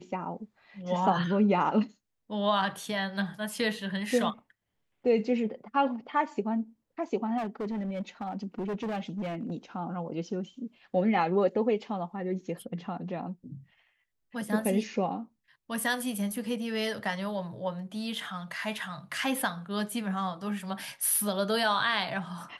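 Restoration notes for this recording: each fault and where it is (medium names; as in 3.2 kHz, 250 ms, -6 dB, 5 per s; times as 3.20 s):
7.37–9.52 s: clipped -29.5 dBFS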